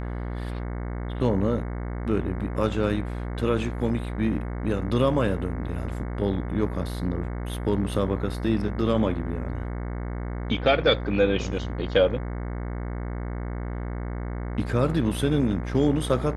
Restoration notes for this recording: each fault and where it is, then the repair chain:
mains buzz 60 Hz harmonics 37 −31 dBFS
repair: hum removal 60 Hz, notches 37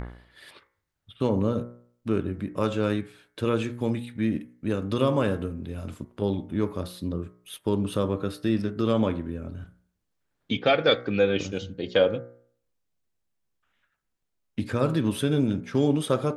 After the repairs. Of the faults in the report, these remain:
none of them is left

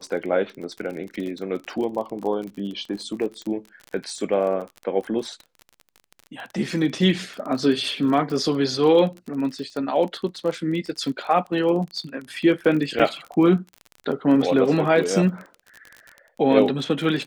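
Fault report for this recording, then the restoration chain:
surface crackle 35 per second −30 dBFS
0:12.99–0:13.00: drop-out 6.5 ms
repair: click removal
repair the gap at 0:12.99, 6.5 ms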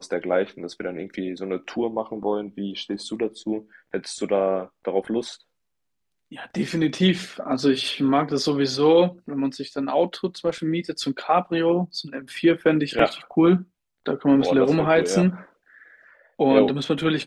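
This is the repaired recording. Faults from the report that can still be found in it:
none of them is left

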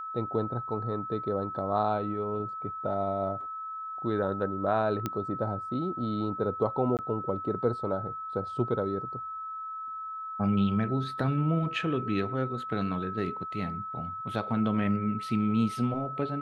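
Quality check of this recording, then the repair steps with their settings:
whistle 1,300 Hz −35 dBFS
0:05.06: click −16 dBFS
0:06.97–0:06.99: drop-out 18 ms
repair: click removal
notch filter 1,300 Hz, Q 30
repair the gap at 0:06.97, 18 ms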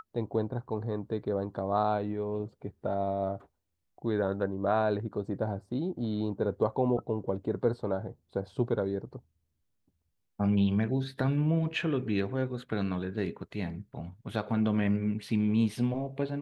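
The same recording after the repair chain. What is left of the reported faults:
none of them is left

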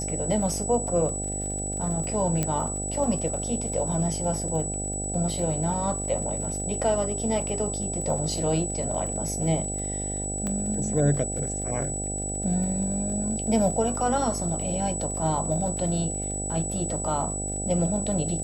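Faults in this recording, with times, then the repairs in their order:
mains buzz 50 Hz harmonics 16 −33 dBFS
surface crackle 43 per second −35 dBFS
whistle 7,900 Hz −31 dBFS
0:02.43: click −11 dBFS
0:10.47: click −18 dBFS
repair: click removal
hum removal 50 Hz, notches 16
notch filter 7,900 Hz, Q 30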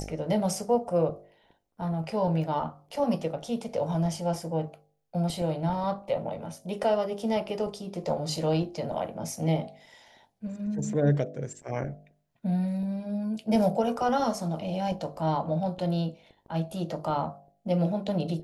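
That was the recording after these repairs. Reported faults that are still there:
0:02.43: click

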